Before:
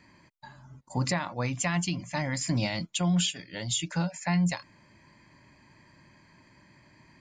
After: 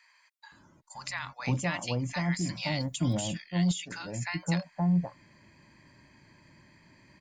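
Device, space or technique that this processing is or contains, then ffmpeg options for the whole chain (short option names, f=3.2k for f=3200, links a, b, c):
de-esser from a sidechain: -filter_complex "[0:a]asettb=1/sr,asplit=3[a][b][c];[a]atrim=end=2.804[d];[b]atrim=start=2.8:end=3.28,asetpts=PTS-STARTPTS,afade=t=in:d=0.004:c=qsin,afade=t=out:st=0.476:d=0.004:c=qsin,aemphasis=mode=production:type=75fm[e];[c]atrim=start=3.276[f];[d][e]acrossfade=d=0.004:c1=hsin:c2=qsin[g];[g][f]acrossfade=d=0.004:c1=qsin:c2=hsin,asplit=2[h][i];[i]highpass=7k,apad=whole_len=317837[j];[h][j]sidechaincompress=threshold=-38dB:ratio=6:attack=1:release=56,acrossover=split=990[k][l];[k]adelay=520[m];[m][l]amix=inputs=2:normalize=0"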